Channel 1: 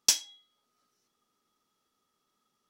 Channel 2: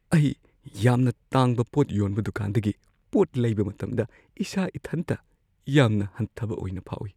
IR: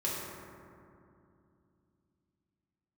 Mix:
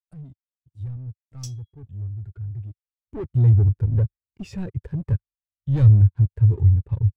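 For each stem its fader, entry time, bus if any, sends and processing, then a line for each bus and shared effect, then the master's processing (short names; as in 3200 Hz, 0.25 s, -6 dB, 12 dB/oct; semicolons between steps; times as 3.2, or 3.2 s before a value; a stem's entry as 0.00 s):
-3.0 dB, 1.35 s, no send, tilt +2 dB/oct; auto duck -6 dB, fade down 1.95 s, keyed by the second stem
2.65 s -22.5 dB -> 3.27 s -10 dB, 0.00 s, no send, sample leveller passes 5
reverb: off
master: resonant low shelf 140 Hz +10 dB, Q 1.5; spectral expander 1.5:1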